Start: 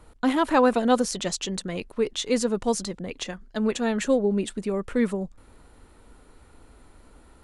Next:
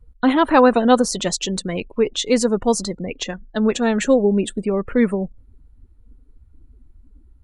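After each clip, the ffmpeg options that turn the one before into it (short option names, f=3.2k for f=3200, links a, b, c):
-af "afftdn=nr=29:nf=-42,volume=6.5dB"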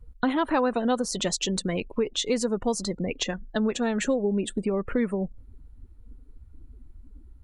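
-af "acompressor=threshold=-26dB:ratio=3,volume=1dB"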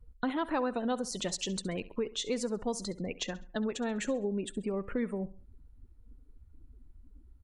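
-af "aecho=1:1:67|134|201:0.126|0.0466|0.0172,volume=-7.5dB"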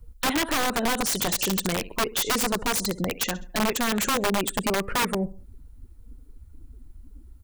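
-filter_complex "[0:a]acrossover=split=510|3400[a][b][c];[b]asoftclip=type=tanh:threshold=-32.5dB[d];[a][d][c]amix=inputs=3:normalize=0,crystalizer=i=1.5:c=0,aeval=exprs='(mod(22.4*val(0)+1,2)-1)/22.4':c=same,volume=9dB"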